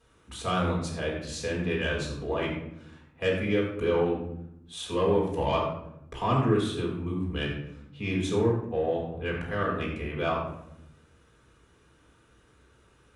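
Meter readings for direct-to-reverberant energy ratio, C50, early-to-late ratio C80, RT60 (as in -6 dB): -3.5 dB, 3.5 dB, 6.0 dB, 0.80 s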